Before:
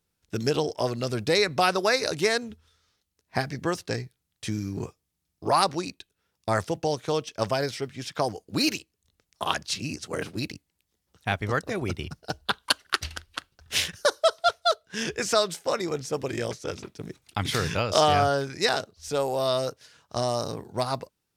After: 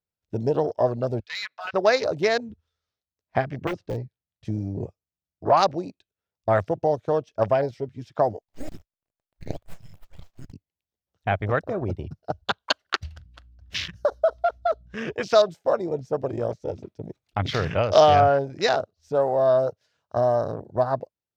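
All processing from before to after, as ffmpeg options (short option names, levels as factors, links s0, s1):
-filter_complex "[0:a]asettb=1/sr,asplit=3[s0][s1][s2];[s0]atrim=end=1.204[s3];[s1]atrim=start=1.2:end=1.74,asetpts=PTS-STARTPTS,afade=t=in:d=0.004:c=qsin,afade=t=out:st=0.536:d=0.004:c=qsin,asuperpass=centerf=2800:order=4:qfactor=0.82,asoftclip=type=hard:threshold=0.0501[s4];[s2]atrim=start=1.736[s5];[s3][s4]acrossfade=d=0.004:c1=hsin:c2=qsin[s6];[s6][s5]acrossfade=d=0.004:c1=qsin:c2=hsin,asettb=1/sr,asplit=3[s7][s8][s9];[s7]atrim=end=3.674[s10];[s8]atrim=start=3.67:end=4.45,asetpts=PTS-STARTPTS,afade=t=in:d=0.004:c=qsin,afade=t=out:st=0.776:d=0.004:c=qsin,lowpass=5100,aeval=exprs='(mod(10.6*val(0)+1,2)-1)/10.6':c=same[s11];[s9]atrim=start=4.446[s12];[s10][s11]acrossfade=d=0.004:c1=hsin:c2=qsin[s13];[s13][s12]acrossfade=d=0.004:c1=qsin:c2=hsin,asettb=1/sr,asplit=3[s14][s15][s16];[s14]atrim=end=8.414[s17];[s15]atrim=start=8.41:end=10.53,asetpts=PTS-STARTPTS,afade=t=in:d=0.004:c=qsin,afade=t=out:st=2.116:d=0.004:c=qsin,highpass=1200,aeval=exprs='abs(val(0))':c=same[s18];[s16]atrim=start=10.526[s19];[s17][s18]acrossfade=d=0.004:c1=hsin:c2=qsin[s20];[s20][s19]acrossfade=d=0.004:c1=qsin:c2=hsin,asettb=1/sr,asplit=3[s21][s22][s23];[s21]atrim=end=13.164[s24];[s22]atrim=start=13.16:end=14.97,asetpts=PTS-STARTPTS,afade=t=in:d=0.004:c=qsin,afade=t=out:st=1.806:d=0.004:c=qsin,aeval=exprs='val(0)+0.00355*(sin(2*PI*60*n/s)+sin(2*PI*2*60*n/s)/2+sin(2*PI*3*60*n/s)/3+sin(2*PI*4*60*n/s)/4+sin(2*PI*5*60*n/s)/5)':c=same,acompressor=threshold=0.0794:ratio=4:attack=3.2:release=140:knee=1:detection=peak[s25];[s23]atrim=start=14.966[s26];[s24][s25]acrossfade=d=0.004:c1=hsin:c2=qsin[s27];[s27][s26]acrossfade=d=0.004:c1=qsin:c2=hsin,afwtdn=0.0224,equalizer=f=100:t=o:w=0.67:g=4,equalizer=f=630:t=o:w=0.67:g=8,equalizer=f=10000:t=o:w=0.67:g=-11"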